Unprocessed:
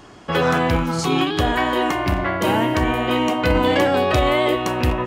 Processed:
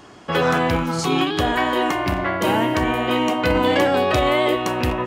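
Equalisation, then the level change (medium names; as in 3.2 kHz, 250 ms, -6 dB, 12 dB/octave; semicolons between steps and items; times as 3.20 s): bass shelf 71 Hz -9.5 dB; 0.0 dB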